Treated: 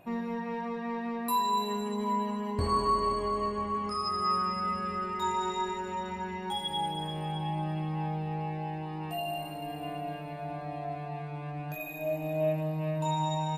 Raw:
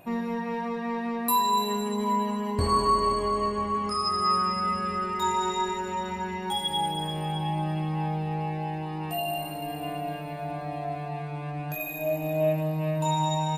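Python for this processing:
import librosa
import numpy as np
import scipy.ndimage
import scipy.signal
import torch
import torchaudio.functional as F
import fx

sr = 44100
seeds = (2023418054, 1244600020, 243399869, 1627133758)

y = fx.high_shelf(x, sr, hz=6600.0, db=-7.5)
y = y * librosa.db_to_amplitude(-4.0)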